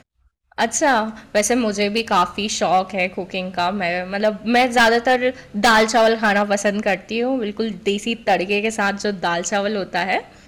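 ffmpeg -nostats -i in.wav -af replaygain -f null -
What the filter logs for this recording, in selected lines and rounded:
track_gain = -1.7 dB
track_peak = 0.233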